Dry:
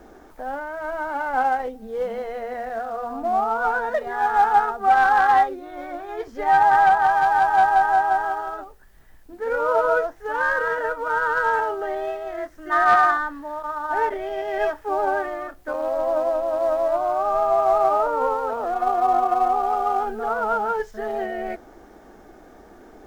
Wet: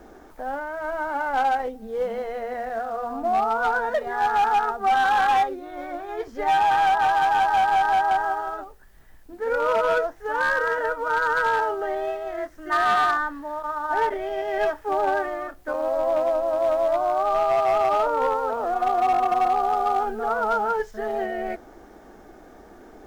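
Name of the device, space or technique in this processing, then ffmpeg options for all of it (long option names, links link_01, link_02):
limiter into clipper: -af "alimiter=limit=-11dB:level=0:latency=1:release=88,asoftclip=type=hard:threshold=-16dB"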